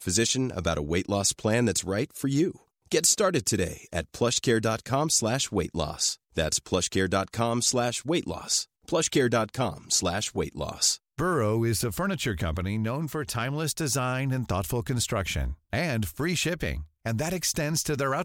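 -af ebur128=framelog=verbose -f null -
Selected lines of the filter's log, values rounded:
Integrated loudness:
  I:         -26.8 LUFS
  Threshold: -36.8 LUFS
Loudness range:
  LRA:         3.3 LU
  Threshold: -46.8 LUFS
  LRA low:   -28.7 LUFS
  LRA high:  -25.4 LUFS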